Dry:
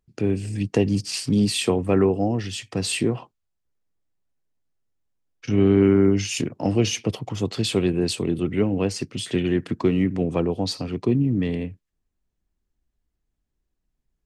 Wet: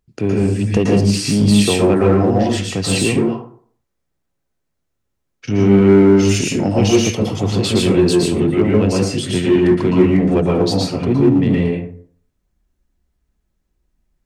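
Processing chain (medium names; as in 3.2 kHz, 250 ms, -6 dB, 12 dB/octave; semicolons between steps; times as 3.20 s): plate-style reverb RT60 0.53 s, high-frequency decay 0.5×, pre-delay 105 ms, DRR -3.5 dB; in parallel at -4 dB: hard clipper -17 dBFS, distortion -7 dB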